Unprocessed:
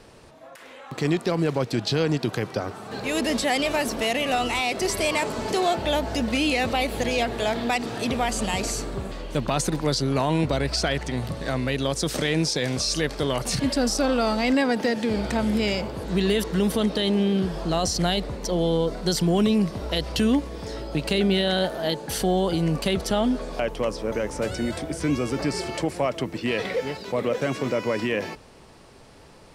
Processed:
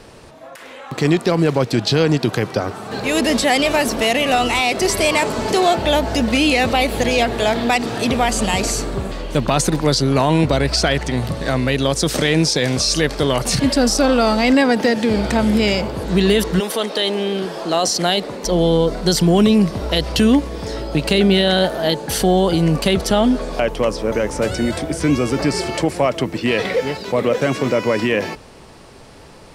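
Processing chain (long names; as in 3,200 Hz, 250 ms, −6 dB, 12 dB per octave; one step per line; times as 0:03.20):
0:16.59–0:18.44: high-pass filter 520 Hz → 210 Hz 12 dB per octave
level +7.5 dB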